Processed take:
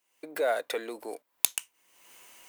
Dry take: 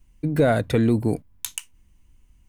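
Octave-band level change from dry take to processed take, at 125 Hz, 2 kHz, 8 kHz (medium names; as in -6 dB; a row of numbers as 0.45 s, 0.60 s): under -40 dB, -4.5 dB, +4.0 dB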